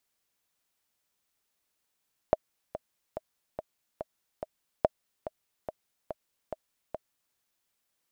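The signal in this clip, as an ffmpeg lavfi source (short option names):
-f lavfi -i "aevalsrc='pow(10,(-8-13.5*gte(mod(t,6*60/143),60/143))/20)*sin(2*PI*629*mod(t,60/143))*exp(-6.91*mod(t,60/143)/0.03)':d=5.03:s=44100"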